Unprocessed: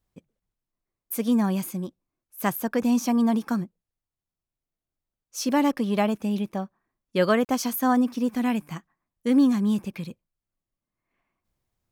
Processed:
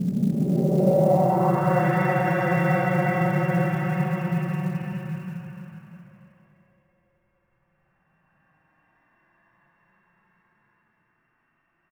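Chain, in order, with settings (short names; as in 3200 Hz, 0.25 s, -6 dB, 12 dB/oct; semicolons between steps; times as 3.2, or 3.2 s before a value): sample sorter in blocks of 16 samples; high shelf 2200 Hz -5 dB; in parallel at +1 dB: limiter -21.5 dBFS, peak gain reduction 11 dB; on the sum: frequency shift -29 Hz; Paulstretch 43×, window 0.05 s, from 6.54; low-pass sweep 230 Hz -> 1800 Hz, 0.26–1.94; short-mantissa float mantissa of 4-bit; on a send: echo 0.633 s -12.5 dB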